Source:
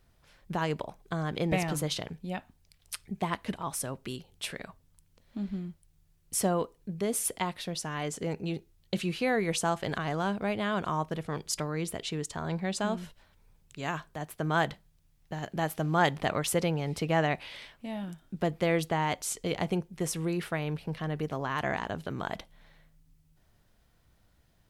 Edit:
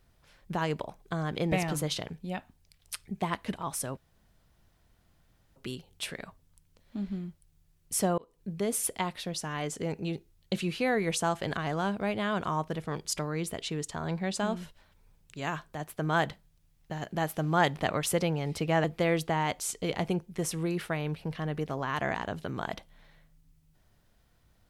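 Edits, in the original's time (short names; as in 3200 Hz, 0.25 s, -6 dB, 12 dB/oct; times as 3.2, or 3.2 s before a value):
3.97 insert room tone 1.59 s
6.59–6.89 fade in
17.25–18.46 cut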